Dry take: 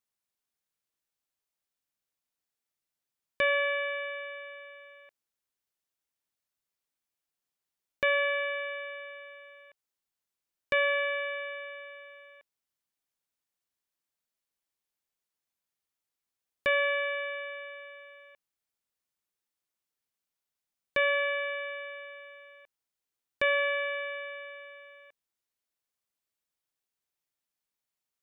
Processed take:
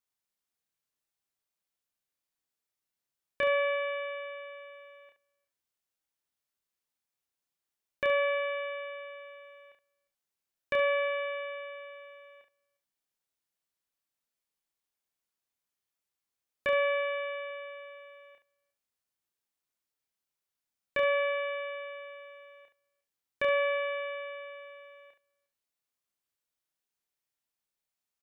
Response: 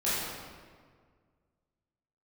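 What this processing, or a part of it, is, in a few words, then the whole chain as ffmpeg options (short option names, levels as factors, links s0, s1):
slapback doubling: -filter_complex "[0:a]asplit=2[s0][s1];[s1]adelay=355.7,volume=0.0398,highshelf=f=4000:g=-8[s2];[s0][s2]amix=inputs=2:normalize=0,acrossover=split=3000[s3][s4];[s4]acompressor=threshold=0.00708:ratio=4:attack=1:release=60[s5];[s3][s5]amix=inputs=2:normalize=0,asplit=3[s6][s7][s8];[s7]adelay=30,volume=0.631[s9];[s8]adelay=71,volume=0.316[s10];[s6][s9][s10]amix=inputs=3:normalize=0,asettb=1/sr,asplit=3[s11][s12][s13];[s11]atrim=end=17.504[s14];[s12]atrim=start=17.5:end=17.98,asetpts=PTS-STARTPTS,afade=t=in:d=0.004:c=qsin,afade=t=out:st=0.476:d=0.004:c=qsin,equalizer=f=110:t=o:w=0.81:g=13.5[s15];[s13]atrim=start=17.976[s16];[s14][s15]acrossfade=d=0.004:c1=hsin:c2=qsin[s17];[s17][s16]acrossfade=d=0.004:c1=qsin:c2=hsin,volume=0.75"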